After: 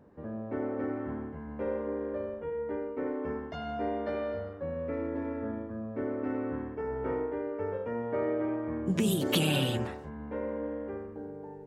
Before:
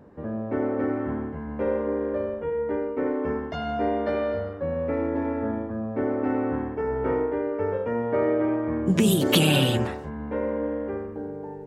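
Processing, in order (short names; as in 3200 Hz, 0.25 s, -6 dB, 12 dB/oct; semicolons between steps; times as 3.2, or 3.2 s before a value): 4.7–6.78 notch 810 Hz, Q 5.1; gain -7.5 dB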